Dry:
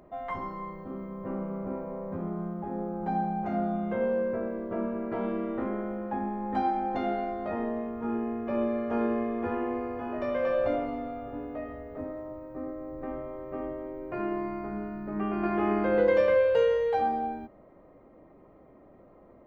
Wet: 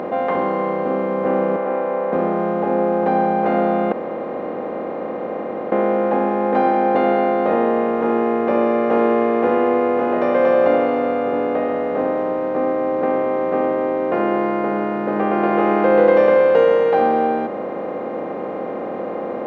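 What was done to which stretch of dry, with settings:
1.56–2.13 BPF 720–2400 Hz
3.92–5.72 room tone
whole clip: per-bin compression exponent 0.4; HPF 200 Hz 12 dB/oct; high shelf 3700 Hz -11.5 dB; gain +7.5 dB

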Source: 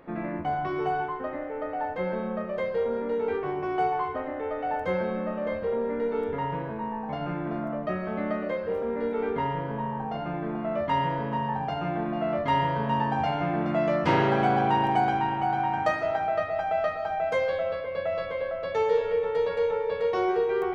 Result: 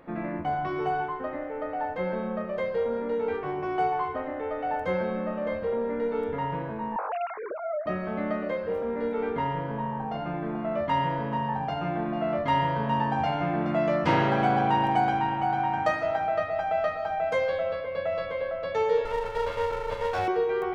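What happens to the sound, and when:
6.96–7.86 sine-wave speech
19.05–20.28 minimum comb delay 1.5 ms
whole clip: notch 400 Hz, Q 12

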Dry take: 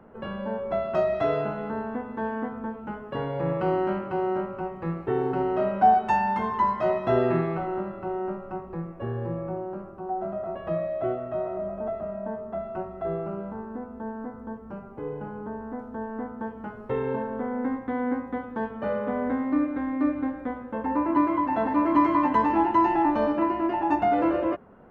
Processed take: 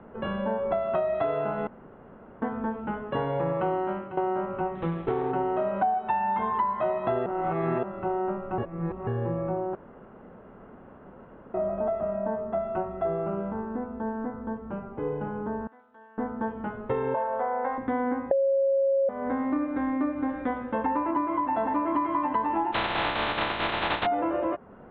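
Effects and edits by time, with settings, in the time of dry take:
1.67–2.42 room tone
3.74–4.17 fade out linear, to -14 dB
4.75–5.32 running maximum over 9 samples
7.26–7.83 reverse
8.58–9.07 reverse
9.75–11.54 room tone
15.67–16.18 differentiator
17.14–17.78 resonant low shelf 440 Hz -11 dB, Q 3
18.31–19.09 bleep 546 Hz -9.5 dBFS
20.29–21.11 high shelf 2400 Hz +8 dB
22.72–24.05 spectral contrast lowered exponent 0.14
whole clip: steep low-pass 3900 Hz 96 dB/oct; dynamic EQ 870 Hz, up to +6 dB, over -35 dBFS, Q 0.84; compressor 6:1, threshold -28 dBFS; gain +3.5 dB

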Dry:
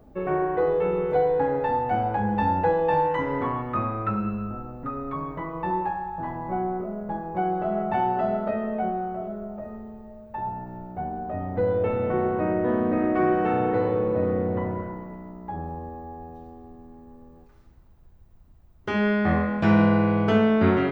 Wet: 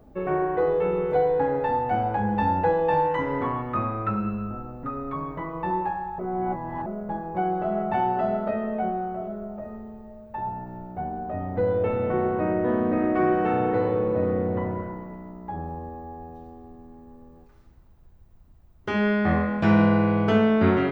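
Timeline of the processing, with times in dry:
6.19–6.86 reverse

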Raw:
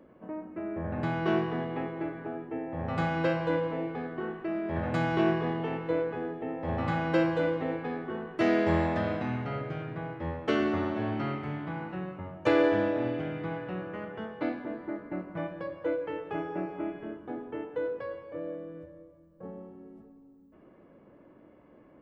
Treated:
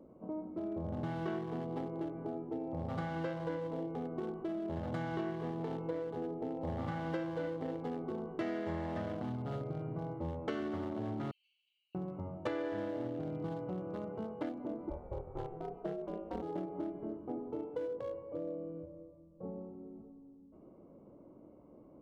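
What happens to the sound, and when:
11.31–11.95 steep high-pass 2600 Hz 96 dB/oct
14.89–16.41 ring modulator 270 Hz -> 100 Hz
whole clip: Wiener smoothing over 25 samples; notch 2500 Hz, Q 10; compressor 6:1, threshold -35 dBFS

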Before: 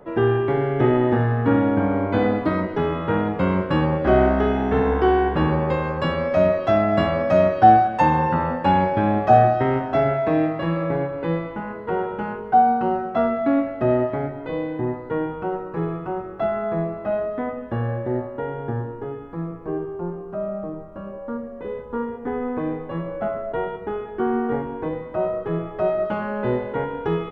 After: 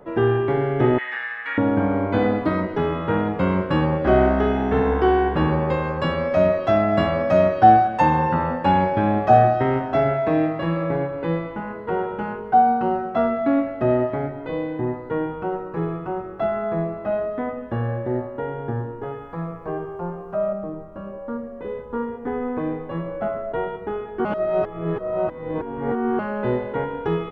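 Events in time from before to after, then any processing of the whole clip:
0.98–1.58 resonant high-pass 2000 Hz, resonance Q 4
19.03–20.53 EQ curve 170 Hz 0 dB, 340 Hz -6 dB, 540 Hz +5 dB
24.25–26.19 reverse

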